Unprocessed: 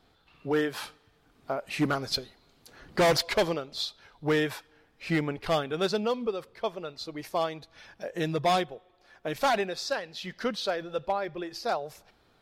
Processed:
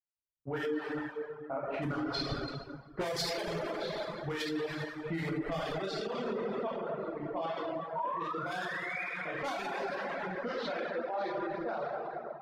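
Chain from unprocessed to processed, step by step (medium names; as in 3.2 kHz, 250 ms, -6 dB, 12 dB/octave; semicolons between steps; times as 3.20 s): 7.95–9.03 s: painted sound rise 910–2500 Hz -28 dBFS; in parallel at -3 dB: level held to a coarse grid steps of 12 dB; 10.48–11.17 s: on the sum: Bessel high-pass 340 Hz, order 6; on a send: feedback echo behind a high-pass 610 ms, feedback 53%, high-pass 1.4 kHz, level -9 dB; on the sum: level-controlled noise filter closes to 620 Hz, open at -17.5 dBFS; gate -47 dBFS, range -15 dB; plate-style reverb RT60 2.6 s, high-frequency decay 0.65×, DRR -7 dB; compression, threshold -19 dBFS, peak gain reduction 10 dB; reverb removal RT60 0.85 s; peak limiter -22.5 dBFS, peak gain reduction 11.5 dB; three bands expanded up and down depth 100%; trim -5 dB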